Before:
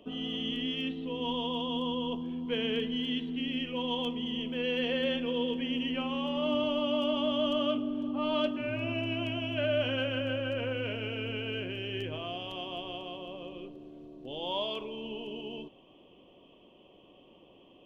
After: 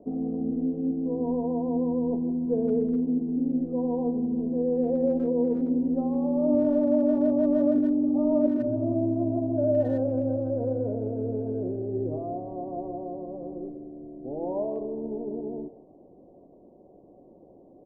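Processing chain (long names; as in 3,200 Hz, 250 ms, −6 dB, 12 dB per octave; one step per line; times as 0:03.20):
Chebyshev low-pass filter 760 Hz, order 4
far-end echo of a speakerphone 160 ms, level −13 dB
dynamic equaliser 320 Hz, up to +5 dB, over −45 dBFS, Q 1.9
level +6 dB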